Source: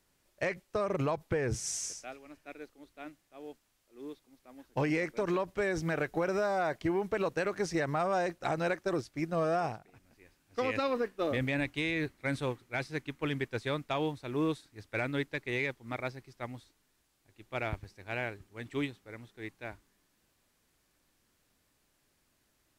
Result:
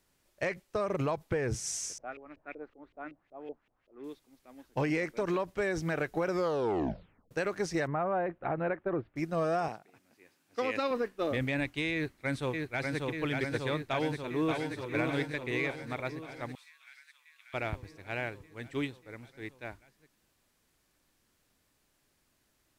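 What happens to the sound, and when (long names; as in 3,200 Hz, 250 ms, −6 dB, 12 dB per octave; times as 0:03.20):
0:01.98–0:04.04: auto-filter low-pass saw up 5.3 Hz 440–3,000 Hz
0:06.28: tape stop 1.03 s
0:07.87–0:09.16: Bessel low-pass filter 1,600 Hz, order 8
0:09.68–0:10.91: high-pass filter 190 Hz
0:11.94–0:13.07: delay throw 590 ms, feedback 75%, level −2.5 dB
0:13.83–0:14.69: delay throw 580 ms, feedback 55%, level −4.5 dB
0:16.55–0:17.54: high-pass filter 1,500 Hz 24 dB per octave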